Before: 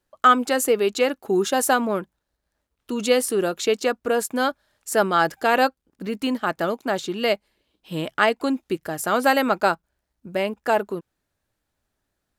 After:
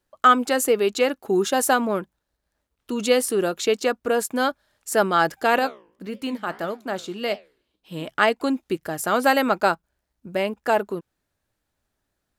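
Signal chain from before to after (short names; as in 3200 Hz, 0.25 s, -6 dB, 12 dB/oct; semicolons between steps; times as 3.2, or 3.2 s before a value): 5.59–8.08 flange 1.7 Hz, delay 9.7 ms, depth 9.6 ms, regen -79%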